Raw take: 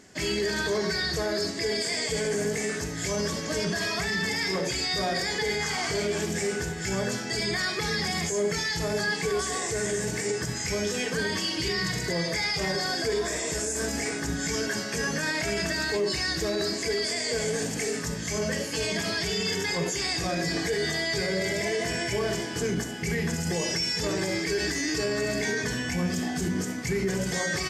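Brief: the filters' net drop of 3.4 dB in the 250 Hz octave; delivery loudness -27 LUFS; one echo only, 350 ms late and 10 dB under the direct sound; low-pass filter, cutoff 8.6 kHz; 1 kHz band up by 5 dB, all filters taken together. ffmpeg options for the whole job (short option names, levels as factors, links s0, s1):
-af "lowpass=8600,equalizer=f=250:t=o:g=-5.5,equalizer=f=1000:t=o:g=7,aecho=1:1:350:0.316"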